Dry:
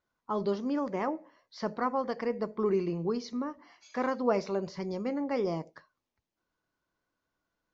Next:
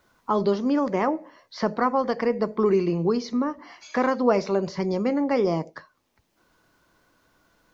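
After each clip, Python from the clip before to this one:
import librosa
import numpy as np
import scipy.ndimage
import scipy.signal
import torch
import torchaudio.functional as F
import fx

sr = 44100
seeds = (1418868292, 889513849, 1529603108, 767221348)

y = fx.band_squash(x, sr, depth_pct=40)
y = F.gain(torch.from_numpy(y), 8.0).numpy()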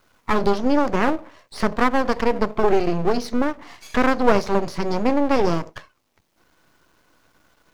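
y = np.maximum(x, 0.0)
y = F.gain(torch.from_numpy(y), 7.5).numpy()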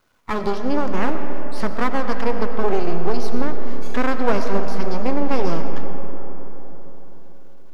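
y = fx.rev_freeverb(x, sr, rt60_s=4.4, hf_ratio=0.4, predelay_ms=55, drr_db=6.0)
y = F.gain(torch.from_numpy(y), -4.0).numpy()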